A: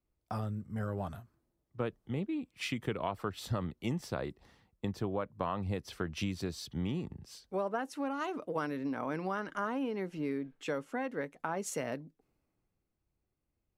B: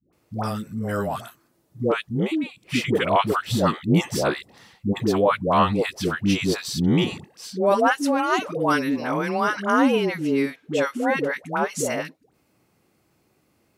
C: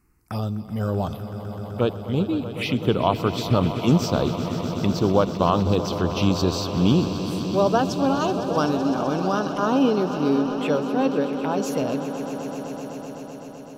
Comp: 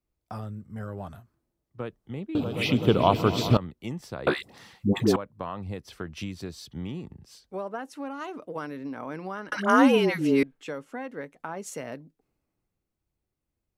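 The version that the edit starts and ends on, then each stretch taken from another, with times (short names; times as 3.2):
A
2.35–3.57 from C
4.27–5.16 from B
9.52–10.43 from B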